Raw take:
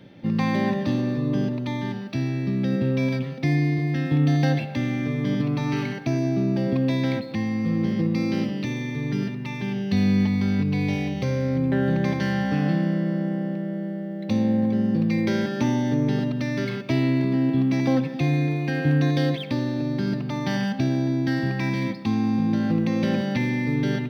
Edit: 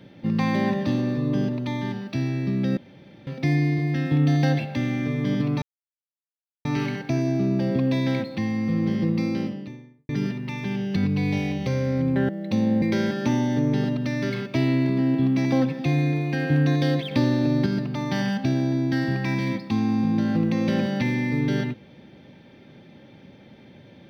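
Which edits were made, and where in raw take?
2.77–3.27 room tone
5.62 insert silence 1.03 s
8.05–9.06 studio fade out
9.93–10.52 cut
11.85–14.07 cut
14.6–15.17 cut
19.46–20.01 gain +4.5 dB

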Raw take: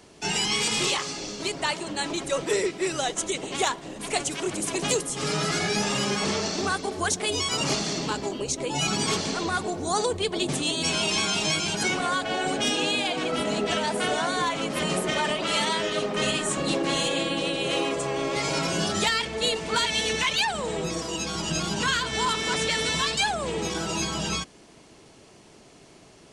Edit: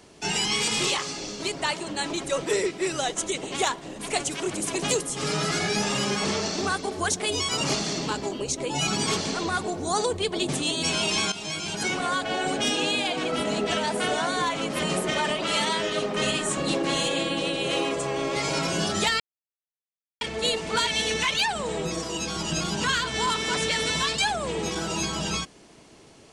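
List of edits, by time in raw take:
11.32–12.34 fade in equal-power, from -12.5 dB
19.2 insert silence 1.01 s

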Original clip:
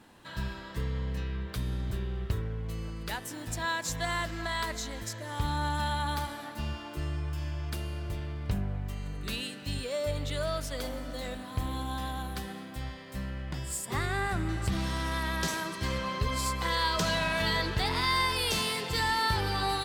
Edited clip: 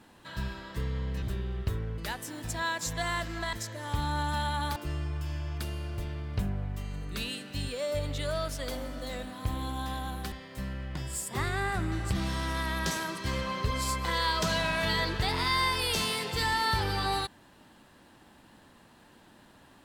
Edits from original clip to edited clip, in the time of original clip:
1.22–1.85 cut
2.61–3.01 cut
4.56–4.99 cut
6.22–6.88 cut
12.44–12.89 cut

